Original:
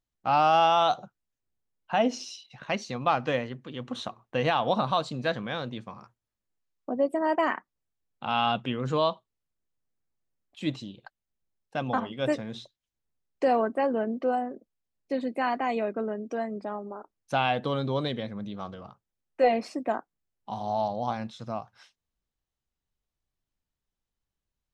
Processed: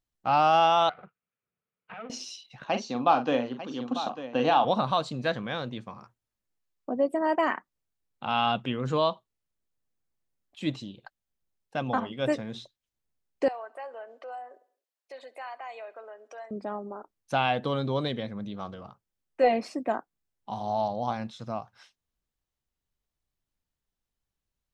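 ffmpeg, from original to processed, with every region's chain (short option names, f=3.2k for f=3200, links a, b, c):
-filter_complex "[0:a]asettb=1/sr,asplit=3[a][b][c];[a]atrim=end=0.894[d];[b]atrim=start=0.89:end=2.1,asetpts=PTS-STARTPTS,afade=t=in:d=0.004:c=qsin,afade=t=out:st=1.206:d=0.004:c=qsin,acompressor=threshold=-34dB:ratio=8:attack=3.2:release=140:knee=1:detection=peak,aeval=exprs='max(val(0),0)':c=same,highpass=130,equalizer=f=170:t=q:w=4:g=6,equalizer=f=310:t=q:w=4:g=-8,equalizer=f=460:t=q:w=4:g=6,equalizer=f=900:t=q:w=4:g=-3,equalizer=f=1.3k:t=q:w=4:g=9,equalizer=f=2.4k:t=q:w=4:g=6,lowpass=f=3k:w=0.5412,lowpass=f=3k:w=1.3066[e];[c]atrim=start=2.096[f];[d][e]acrossfade=d=0.004:c1=hsin:c2=qsin[g];[g][f]acrossfade=d=0.004:c1=qsin:c2=hsin,asettb=1/sr,asplit=3[h][i][j];[h]atrim=end=2.644[k];[i]atrim=start=2.64:end=4.65,asetpts=PTS-STARTPTS,afade=t=in:d=0.004:c=qsin,afade=t=out:st=2.006:d=0.004:c=qsin,highpass=200,equalizer=f=270:t=q:w=4:g=9,equalizer=f=790:t=q:w=4:g=6,equalizer=f=2k:t=q:w=4:g=-9,lowpass=f=6.9k:w=0.5412,lowpass=f=6.9k:w=1.3066,aecho=1:1:41|897:0.376|0.251,atrim=end_sample=88641[l];[j]atrim=start=4.646[m];[k][l]acrossfade=d=0.004:c1=hsin:c2=qsin[n];[n][m]acrossfade=d=0.004:c1=qsin:c2=hsin,asettb=1/sr,asplit=3[o][p][q];[o]atrim=end=13.484[r];[p]atrim=start=13.48:end=16.51,asetpts=PTS-STARTPTS,afade=t=in:d=0.004:c=qsin,afade=t=out:st=3.026:d=0.004:c=qsin,highpass=f=590:w=0.5412,highpass=f=590:w=1.3066,acompressor=threshold=-45dB:ratio=2:attack=3.2:release=140:knee=1:detection=peak,aecho=1:1:67|134|201|268:0.0794|0.0461|0.0267|0.0155,atrim=end_sample=133623[s];[q]atrim=start=16.506[t];[r][s]acrossfade=d=0.004:c1=hsin:c2=qsin[u];[u][t]acrossfade=d=0.004:c1=qsin:c2=hsin"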